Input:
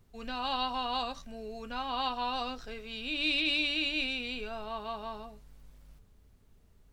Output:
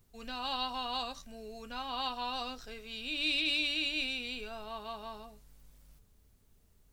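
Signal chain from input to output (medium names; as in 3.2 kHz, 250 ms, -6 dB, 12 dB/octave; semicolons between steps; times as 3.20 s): treble shelf 5 kHz +11 dB; trim -4.5 dB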